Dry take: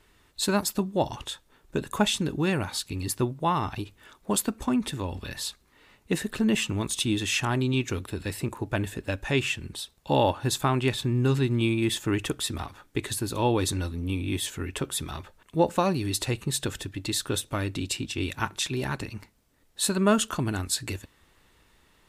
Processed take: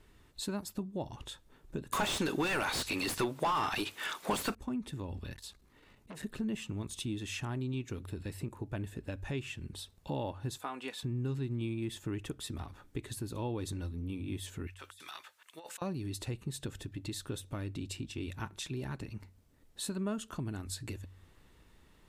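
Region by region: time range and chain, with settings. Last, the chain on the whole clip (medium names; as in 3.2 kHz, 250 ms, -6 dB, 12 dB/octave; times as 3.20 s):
1.92–4.55 s: tilt EQ +4 dB/octave + overdrive pedal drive 36 dB, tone 2 kHz, clips at -0.5 dBFS
5.34–6.23 s: compression, threshold -33 dBFS + transformer saturation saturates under 1.9 kHz
10.58–11.03 s: high-pass 510 Hz + comb 4.1 ms, depth 54%
14.67–15.82 s: high-pass 1.5 kHz + compressor with a negative ratio -44 dBFS
whole clip: bass shelf 440 Hz +8.5 dB; de-hum 46.7 Hz, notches 2; compression 2:1, threshold -38 dBFS; trim -5.5 dB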